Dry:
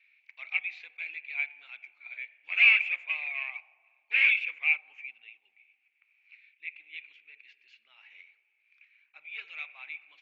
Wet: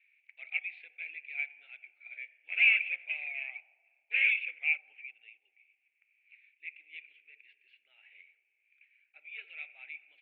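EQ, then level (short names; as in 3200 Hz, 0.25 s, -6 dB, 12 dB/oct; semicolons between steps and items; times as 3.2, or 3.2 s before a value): LPF 2800 Hz 24 dB/oct; low shelf 450 Hz -3.5 dB; fixed phaser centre 450 Hz, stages 4; 0.0 dB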